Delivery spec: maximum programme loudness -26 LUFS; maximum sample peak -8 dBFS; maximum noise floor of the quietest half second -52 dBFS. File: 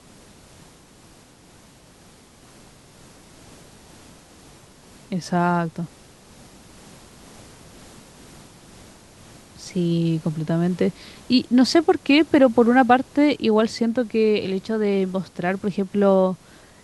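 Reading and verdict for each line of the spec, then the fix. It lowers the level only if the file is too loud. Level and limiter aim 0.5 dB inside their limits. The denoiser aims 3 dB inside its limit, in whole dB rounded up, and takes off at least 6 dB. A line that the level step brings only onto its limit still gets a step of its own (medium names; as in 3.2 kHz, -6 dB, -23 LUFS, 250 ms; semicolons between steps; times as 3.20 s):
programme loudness -20.5 LUFS: fail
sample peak -3.5 dBFS: fail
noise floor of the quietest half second -50 dBFS: fail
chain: trim -6 dB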